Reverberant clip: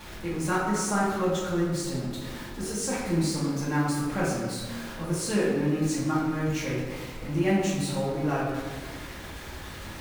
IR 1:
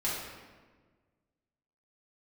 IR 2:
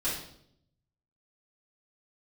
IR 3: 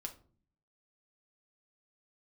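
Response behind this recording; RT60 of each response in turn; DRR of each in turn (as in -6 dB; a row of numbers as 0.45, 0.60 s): 1; 1.5, 0.70, 0.45 s; -9.0, -11.5, 2.5 dB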